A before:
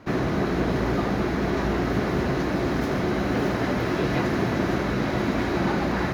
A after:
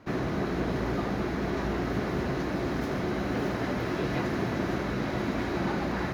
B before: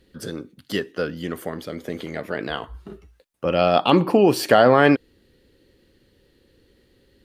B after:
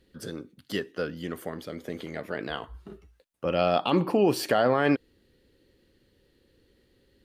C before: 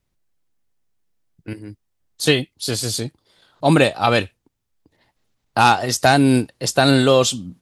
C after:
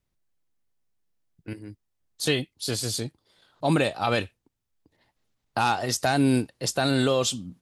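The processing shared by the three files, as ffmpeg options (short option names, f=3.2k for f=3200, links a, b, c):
-af "alimiter=limit=-6.5dB:level=0:latency=1:release=67,volume=-5.5dB"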